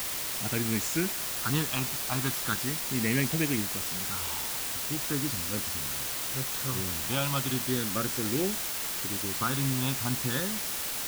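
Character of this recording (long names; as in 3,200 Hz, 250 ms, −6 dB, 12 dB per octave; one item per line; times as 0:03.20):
phaser sweep stages 6, 0.38 Hz, lowest notch 490–1,100 Hz
a quantiser's noise floor 6 bits, dither triangular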